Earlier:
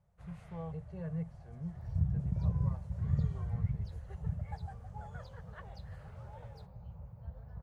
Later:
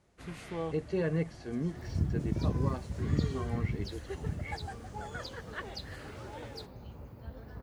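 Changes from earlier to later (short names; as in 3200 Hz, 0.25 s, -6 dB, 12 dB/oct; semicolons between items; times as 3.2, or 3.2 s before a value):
speech +5.0 dB; master: remove EQ curve 170 Hz 0 dB, 290 Hz -27 dB, 540 Hz -7 dB, 840 Hz -6 dB, 2100 Hz -15 dB, 4400 Hz -19 dB, 13000 Hz -16 dB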